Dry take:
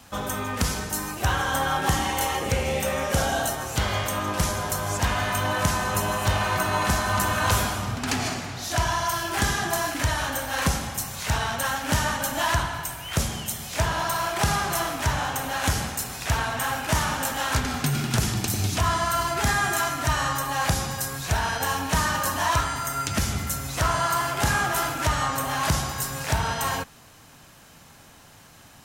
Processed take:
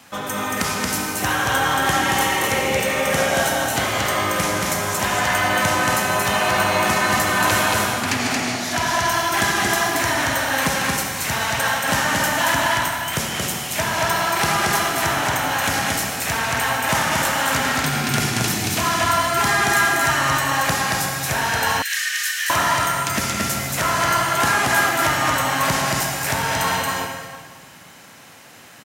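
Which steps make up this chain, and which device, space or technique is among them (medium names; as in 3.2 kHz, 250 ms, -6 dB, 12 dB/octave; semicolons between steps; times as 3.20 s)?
stadium PA (high-pass 150 Hz 12 dB/octave; peaking EQ 2.1 kHz +5 dB 0.77 oct; loudspeakers at several distances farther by 78 m -2 dB, 95 m -11 dB; reverberation RT60 1.6 s, pre-delay 63 ms, DRR 4.5 dB); 21.82–22.50 s: elliptic high-pass 1.7 kHz, stop band 60 dB; trim +2 dB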